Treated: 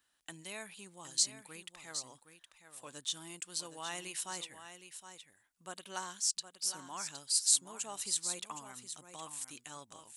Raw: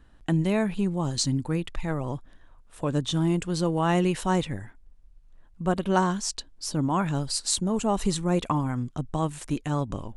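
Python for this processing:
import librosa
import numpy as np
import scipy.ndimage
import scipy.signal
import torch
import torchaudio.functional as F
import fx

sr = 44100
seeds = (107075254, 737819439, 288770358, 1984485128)

p1 = np.diff(x, prepend=0.0)
y = p1 + fx.echo_single(p1, sr, ms=766, db=-10.0, dry=0)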